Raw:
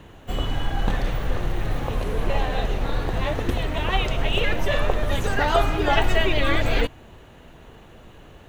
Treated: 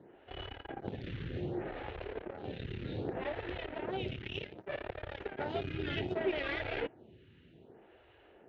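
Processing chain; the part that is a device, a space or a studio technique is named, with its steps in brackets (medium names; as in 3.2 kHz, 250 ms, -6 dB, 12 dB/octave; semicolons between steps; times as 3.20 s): vibe pedal into a guitar amplifier (lamp-driven phase shifter 0.65 Hz; valve stage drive 24 dB, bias 0.7; cabinet simulation 92–3500 Hz, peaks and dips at 99 Hz +3 dB, 370 Hz +7 dB, 1.1 kHz -10 dB); trim -5 dB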